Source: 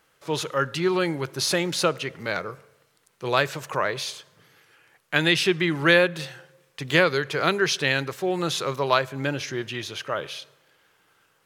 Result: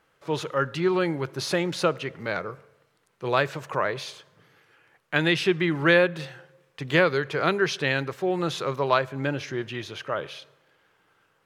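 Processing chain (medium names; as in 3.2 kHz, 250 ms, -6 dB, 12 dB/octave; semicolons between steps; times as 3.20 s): treble shelf 3.8 kHz -11 dB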